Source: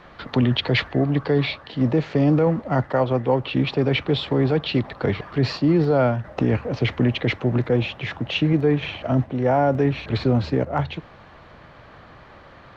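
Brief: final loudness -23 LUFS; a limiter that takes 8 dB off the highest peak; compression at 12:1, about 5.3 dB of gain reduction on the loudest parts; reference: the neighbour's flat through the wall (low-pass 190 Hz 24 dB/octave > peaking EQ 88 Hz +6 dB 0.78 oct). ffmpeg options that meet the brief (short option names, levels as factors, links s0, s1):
-af "acompressor=threshold=0.112:ratio=12,alimiter=limit=0.126:level=0:latency=1,lowpass=f=190:w=0.5412,lowpass=f=190:w=1.3066,equalizer=f=88:t=o:w=0.78:g=6,volume=2.66"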